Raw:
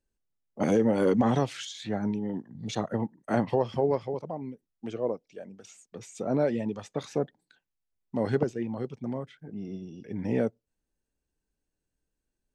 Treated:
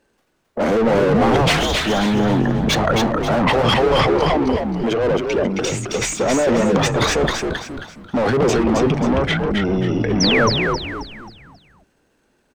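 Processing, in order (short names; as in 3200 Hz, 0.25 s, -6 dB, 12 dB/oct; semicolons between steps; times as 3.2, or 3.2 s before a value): overdrive pedal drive 35 dB, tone 1100 Hz, clips at -12.5 dBFS; transient shaper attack 0 dB, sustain +12 dB; painted sound fall, 10.2–10.49, 930–6300 Hz -21 dBFS; on a send: frequency-shifting echo 0.268 s, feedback 38%, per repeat -77 Hz, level -4 dB; on the sum: gain +2.5 dB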